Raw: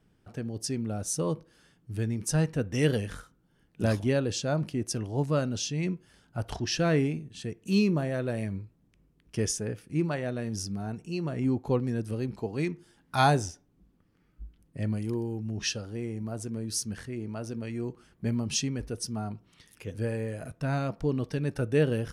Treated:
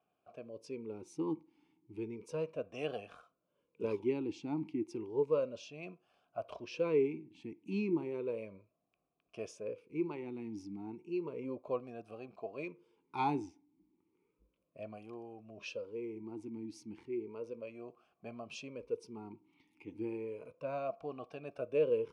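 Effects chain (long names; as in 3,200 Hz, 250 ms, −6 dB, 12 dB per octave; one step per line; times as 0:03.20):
formant filter swept between two vowels a-u 0.33 Hz
level +4 dB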